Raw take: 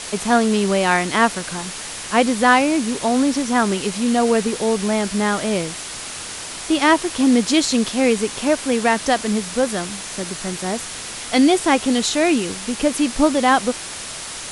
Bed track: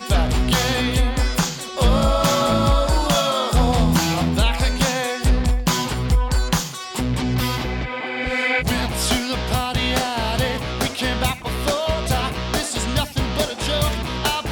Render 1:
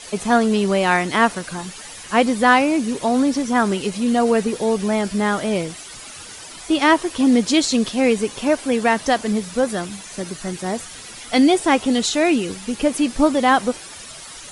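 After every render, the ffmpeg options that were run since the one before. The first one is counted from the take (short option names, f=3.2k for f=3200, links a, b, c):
-af "afftdn=nr=11:nf=-32"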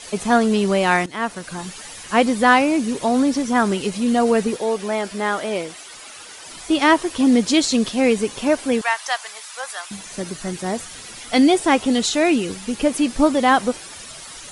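-filter_complex "[0:a]asettb=1/sr,asplit=3[a][b][c];[a]atrim=end=4.564[d];[b]atrim=start=4.56:end=6.46,asetpts=PTS-STARTPTS,afade=t=in:d=0.004:c=qsin,afade=t=out:st=1.896:d=0.004:c=qsin,bass=f=250:g=-13,treble=f=4k:g=-3[e];[c]atrim=start=6.456[f];[d][e]acrossfade=d=0.004:c1=hsin:c2=qsin[g];[g][f]acrossfade=d=0.004:c1=qsin:c2=hsin,asettb=1/sr,asplit=3[h][i][j];[h]atrim=end=8.814[k];[i]atrim=start=8.81:end=9.91,asetpts=PTS-STARTPTS,afade=t=in:d=0.004:c=qsin,afade=t=out:st=1.096:d=0.004:c=qsin,highpass=f=850:w=0.5412,highpass=f=850:w=1.3066[l];[j]atrim=start=9.906[m];[k][l]acrossfade=d=0.004:c1=hsin:c2=qsin[n];[n][m]acrossfade=d=0.004:c1=qsin:c2=hsin,asplit=2[o][p];[o]atrim=end=1.06,asetpts=PTS-STARTPTS,afade=t=out:st=1.056:d=0.004:c=hsin:silence=0.16788[q];[p]atrim=start=1.06,asetpts=PTS-STARTPTS,afade=t=in:d=0.61:silence=0.16788[r];[q][r]concat=n=2:v=0:a=1"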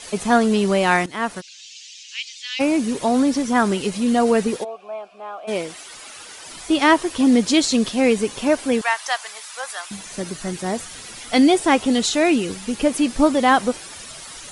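-filter_complex "[0:a]asplit=3[a][b][c];[a]afade=t=out:st=1.4:d=0.02[d];[b]asuperpass=centerf=4200:order=8:qfactor=0.96,afade=t=in:st=1.4:d=0.02,afade=t=out:st=2.59:d=0.02[e];[c]afade=t=in:st=2.59:d=0.02[f];[d][e][f]amix=inputs=3:normalize=0,asplit=3[g][h][i];[g]afade=t=out:st=4.63:d=0.02[j];[h]asplit=3[k][l][m];[k]bandpass=f=730:t=q:w=8,volume=0dB[n];[l]bandpass=f=1.09k:t=q:w=8,volume=-6dB[o];[m]bandpass=f=2.44k:t=q:w=8,volume=-9dB[p];[n][o][p]amix=inputs=3:normalize=0,afade=t=in:st=4.63:d=0.02,afade=t=out:st=5.47:d=0.02[q];[i]afade=t=in:st=5.47:d=0.02[r];[j][q][r]amix=inputs=3:normalize=0"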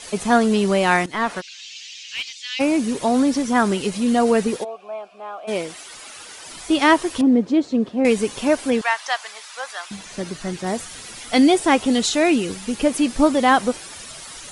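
-filter_complex "[0:a]asettb=1/sr,asplit=3[a][b][c];[a]atrim=end=1.134[d];[b]atrim=start=1.13:end=2.33,asetpts=PTS-STARTPTS,afade=t=in:d=0.004:c=qsin,afade=t=out:st=1.196:d=0.004:c=qsin,asplit=2[e][f];[f]highpass=f=720:p=1,volume=16dB,asoftclip=type=tanh:threshold=-12dB[g];[e][g]amix=inputs=2:normalize=0,lowpass=f=1.9k:p=1,volume=-6dB[h];[c]atrim=start=2.326[i];[d][h]acrossfade=d=0.004:c1=hsin:c2=qsin[j];[j][i]acrossfade=d=0.004:c1=qsin:c2=hsin,asettb=1/sr,asplit=3[k][l][m];[k]atrim=end=7.214[n];[l]atrim=start=7.21:end=8.05,asetpts=PTS-STARTPTS,afade=t=in:d=0.004:c=qsin,afade=t=out:st=0.836:d=0.004:c=qsin,bandpass=f=330:t=q:w=0.72[o];[m]atrim=start=8.046[p];[n][o]acrossfade=d=0.004:c1=hsin:c2=qsin[q];[q][p]acrossfade=d=0.004:c1=qsin:c2=hsin,asettb=1/sr,asplit=3[r][s][t];[r]atrim=end=8.704[u];[s]atrim=start=8.7:end=10.67,asetpts=PTS-STARTPTS,afade=t=in:d=0.004:c=qsin,afade=t=out:st=1.966:d=0.004:c=qsin,acrossover=split=6600[v][w];[w]acompressor=threshold=-47dB:ratio=4:attack=1:release=60[x];[v][x]amix=inputs=2:normalize=0[y];[t]atrim=start=10.666[z];[u][y]acrossfade=d=0.004:c1=hsin:c2=qsin[aa];[aa][z]acrossfade=d=0.004:c1=qsin:c2=hsin"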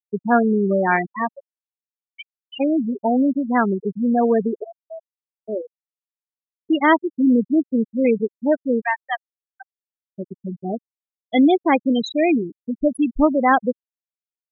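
-af "agate=range=-33dB:threshold=-28dB:ratio=3:detection=peak,afftfilt=real='re*gte(hypot(re,im),0.316)':imag='im*gte(hypot(re,im),0.316)':win_size=1024:overlap=0.75"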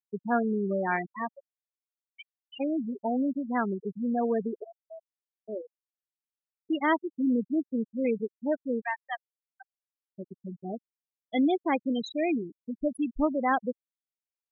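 -af "volume=-10dB"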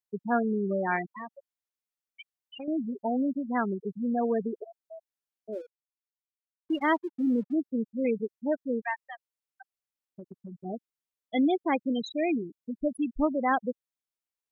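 -filter_complex "[0:a]asettb=1/sr,asplit=3[a][b][c];[a]atrim=end=1.164[d];[b]atrim=start=1.16:end=2.68,asetpts=PTS-STARTPTS,afade=t=in:d=0.004:c=qsin,afade=t=out:st=1.516:d=0.004:c=qsin,acompressor=threshold=-38dB:ratio=3:attack=3.2:release=140:knee=1:detection=peak[e];[c]atrim=start=2.676[f];[d][e]acrossfade=d=0.004:c1=hsin:c2=qsin[g];[g][f]acrossfade=d=0.004:c1=qsin:c2=hsin,asplit=3[h][i][j];[h]afade=t=out:st=5.52:d=0.02[k];[i]aeval=exprs='sgn(val(0))*max(abs(val(0))-0.00133,0)':c=same,afade=t=in:st=5.52:d=0.02,afade=t=out:st=7.52:d=0.02[l];[j]afade=t=in:st=7.52:d=0.02[m];[k][l][m]amix=inputs=3:normalize=0,asplit=3[n][o][p];[n]afade=t=out:st=9.06:d=0.02[q];[o]acompressor=threshold=-38dB:ratio=5:attack=3.2:release=140:knee=1:detection=peak,afade=t=in:st=9.06:d=0.02,afade=t=out:st=10.64:d=0.02[r];[p]afade=t=in:st=10.64:d=0.02[s];[q][r][s]amix=inputs=3:normalize=0"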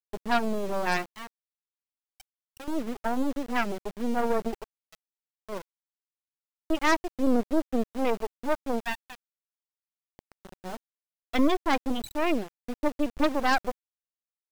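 -af "aeval=exprs='0.188*(cos(1*acos(clip(val(0)/0.188,-1,1)))-cos(1*PI/2))+0.0473*(cos(2*acos(clip(val(0)/0.188,-1,1)))-cos(2*PI/2))+0.0266*(cos(4*acos(clip(val(0)/0.188,-1,1)))-cos(4*PI/2))+0.075*(cos(6*acos(clip(val(0)/0.188,-1,1)))-cos(6*PI/2))+0.0188*(cos(8*acos(clip(val(0)/0.188,-1,1)))-cos(8*PI/2))':c=same,aeval=exprs='val(0)*gte(abs(val(0)),0.0141)':c=same"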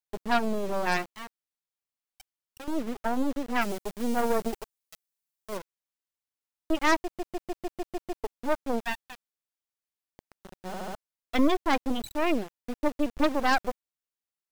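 -filter_complex "[0:a]asettb=1/sr,asplit=3[a][b][c];[a]atrim=end=3.614[d];[b]atrim=start=3.61:end=5.57,asetpts=PTS-STARTPTS,afade=t=in:d=0.004:c=qsin,afade=t=out:st=1.956:d=0.004:c=qsin,highshelf=f=5k:g=10[e];[c]atrim=start=5.566[f];[d][e]acrossfade=d=0.004:c1=hsin:c2=qsin[g];[g][f]acrossfade=d=0.004:c1=qsin:c2=hsin,asplit=13[h][i][j][k][l][m][n][o][p][q][r][s][t];[h]atrim=end=7.192[u];[i]atrim=start=7.038:end=7.192[v];[j]atrim=start=7.038:end=7.192[w];[k]atrim=start=7.038:end=7.192[x];[l]atrim=start=7.038:end=7.192[y];[m]atrim=start=7.038:end=7.192[z];[n]atrim=start=7.038:end=7.192[aa];[o]atrim=start=7.038:end=7.192[ab];[p]atrim=start=8.238:end=10.742[ac];[q]atrim=start=10.668:end=10.742[ad];[r]atrim=start=10.668:end=10.742[ae];[s]atrim=start=10.668:end=10.742[af];[t]atrim=start=10.948[ag];[u][v]acrossfade=d=0.004:c1=hsin:c2=hsin[ah];[ah][w]acrossfade=d=0.004:c1=hsin:c2=hsin[ai];[ai][x]acrossfade=d=0.004:c1=hsin:c2=hsin[aj];[aj][y]acrossfade=d=0.004:c1=hsin:c2=hsin[ak];[ak][z]acrossfade=d=0.004:c1=hsin:c2=hsin[al];[al][aa]acrossfade=d=0.004:c1=hsin:c2=hsin[am];[am][ab]acrossfade=d=0.004:c1=hsin:c2=hsin[an];[an][ac]acrossfade=d=0.004:c1=hsin:c2=hsin[ao];[ao][ad]acrossfade=d=0.004:c1=hsin:c2=hsin[ap];[ap][ae]acrossfade=d=0.004:c1=hsin:c2=hsin[aq];[aq][af]acrossfade=d=0.004:c1=hsin:c2=hsin[ar];[ar][ag]acrossfade=d=0.004:c1=hsin:c2=hsin"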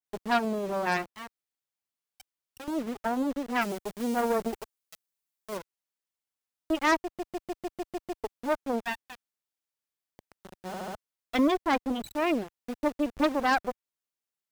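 -af "highpass=f=61:p=1,adynamicequalizer=threshold=0.00794:dfrequency=2400:dqfactor=0.7:tfrequency=2400:tqfactor=0.7:attack=5:release=100:ratio=0.375:range=3:mode=cutabove:tftype=highshelf"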